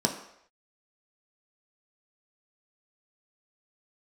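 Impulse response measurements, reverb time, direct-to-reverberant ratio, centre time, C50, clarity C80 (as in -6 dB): not exponential, 1.5 dB, 20 ms, 9.0 dB, 11.0 dB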